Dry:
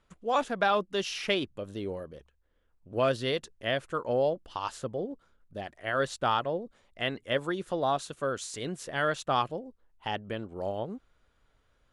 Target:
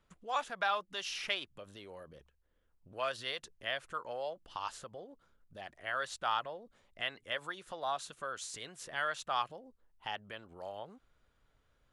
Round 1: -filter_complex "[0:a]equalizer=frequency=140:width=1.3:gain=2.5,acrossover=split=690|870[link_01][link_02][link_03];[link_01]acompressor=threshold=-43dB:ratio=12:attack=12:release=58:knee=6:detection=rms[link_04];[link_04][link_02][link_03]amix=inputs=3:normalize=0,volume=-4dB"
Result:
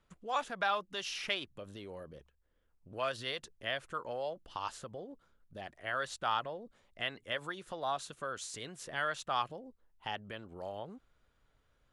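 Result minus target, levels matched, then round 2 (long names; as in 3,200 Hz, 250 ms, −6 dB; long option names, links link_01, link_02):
downward compressor: peak gain reduction −7 dB
-filter_complex "[0:a]equalizer=frequency=140:width=1.3:gain=2.5,acrossover=split=690|870[link_01][link_02][link_03];[link_01]acompressor=threshold=-50.5dB:ratio=12:attack=12:release=58:knee=6:detection=rms[link_04];[link_04][link_02][link_03]amix=inputs=3:normalize=0,volume=-4dB"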